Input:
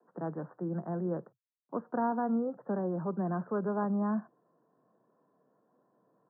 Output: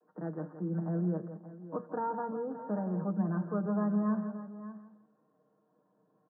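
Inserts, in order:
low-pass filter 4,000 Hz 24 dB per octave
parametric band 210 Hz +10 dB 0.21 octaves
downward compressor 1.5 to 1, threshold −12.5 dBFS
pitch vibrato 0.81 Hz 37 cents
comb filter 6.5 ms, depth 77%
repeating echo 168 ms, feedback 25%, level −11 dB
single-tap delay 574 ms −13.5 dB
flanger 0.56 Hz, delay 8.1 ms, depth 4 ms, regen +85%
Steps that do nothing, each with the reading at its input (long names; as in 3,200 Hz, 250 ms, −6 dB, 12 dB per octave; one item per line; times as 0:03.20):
low-pass filter 4,000 Hz: nothing at its input above 1,500 Hz
downward compressor, threshold −12.5 dBFS: peak of its input −17.0 dBFS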